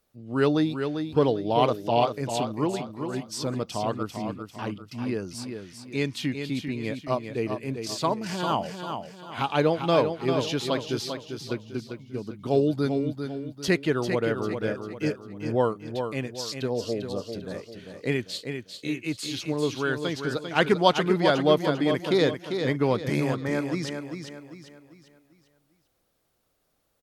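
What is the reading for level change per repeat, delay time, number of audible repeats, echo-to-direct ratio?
−8.0 dB, 396 ms, 4, −6.5 dB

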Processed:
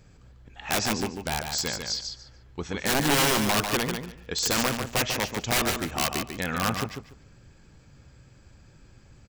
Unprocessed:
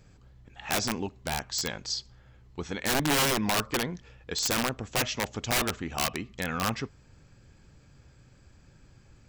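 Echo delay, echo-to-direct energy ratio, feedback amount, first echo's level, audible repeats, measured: 145 ms, −6.0 dB, 20%, −6.0 dB, 3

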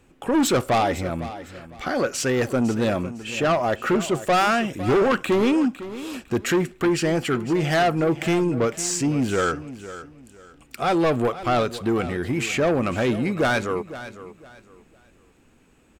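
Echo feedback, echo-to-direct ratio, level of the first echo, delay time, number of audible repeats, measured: 27%, −14.0 dB, −14.5 dB, 505 ms, 2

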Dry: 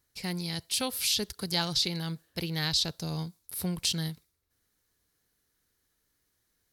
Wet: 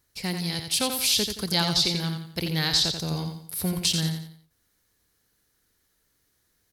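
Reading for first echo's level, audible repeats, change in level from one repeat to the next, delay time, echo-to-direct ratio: −6.5 dB, 4, −8.5 dB, 87 ms, −6.0 dB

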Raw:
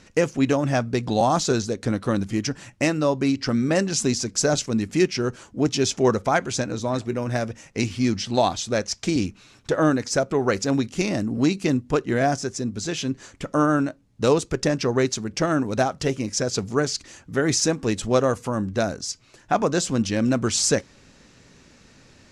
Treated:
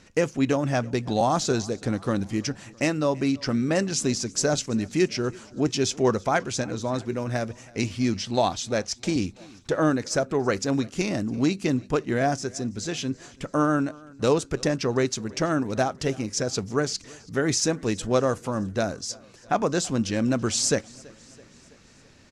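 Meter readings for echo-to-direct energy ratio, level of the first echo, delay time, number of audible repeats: −22.0 dB, −24.0 dB, 330 ms, 3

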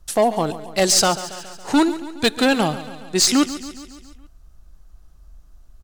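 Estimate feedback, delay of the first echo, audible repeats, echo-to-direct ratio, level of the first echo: 60%, 139 ms, 5, −12.5 dB, −14.5 dB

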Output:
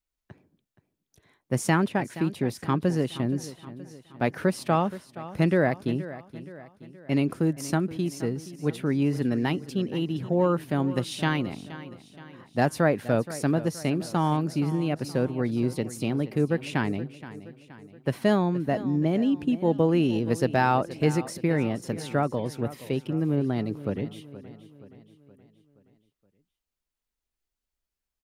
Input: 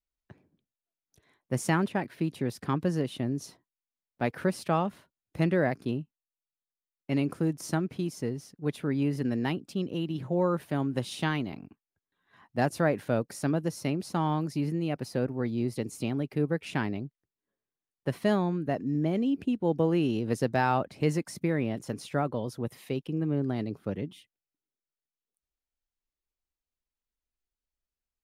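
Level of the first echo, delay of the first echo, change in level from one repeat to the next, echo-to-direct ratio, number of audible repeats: −15.5 dB, 473 ms, −6.0 dB, −14.5 dB, 4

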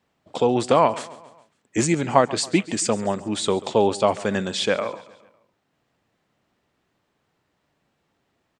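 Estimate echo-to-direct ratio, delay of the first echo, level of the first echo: −17.5 dB, 138 ms, −19.0 dB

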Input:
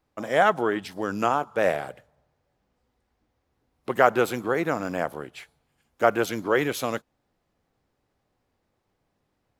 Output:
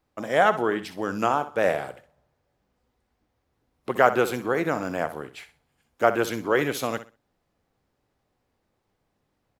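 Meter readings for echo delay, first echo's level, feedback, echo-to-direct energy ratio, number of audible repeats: 63 ms, −13.0 dB, 23%, −13.0 dB, 2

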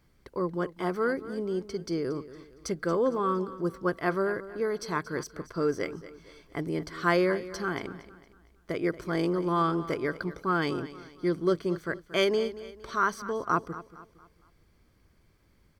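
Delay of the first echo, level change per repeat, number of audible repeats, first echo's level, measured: 230 ms, −8.0 dB, 3, −15.5 dB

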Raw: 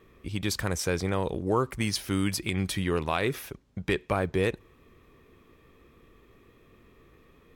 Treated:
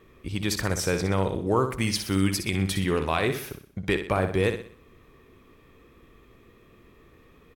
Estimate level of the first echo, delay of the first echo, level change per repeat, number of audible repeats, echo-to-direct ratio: −8.5 dB, 62 ms, −7.5 dB, 4, −7.5 dB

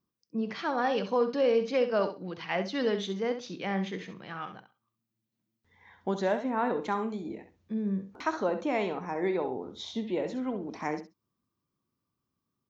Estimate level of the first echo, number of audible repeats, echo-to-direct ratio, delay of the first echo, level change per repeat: −10.0 dB, 2, −10.0 dB, 66 ms, −16.0 dB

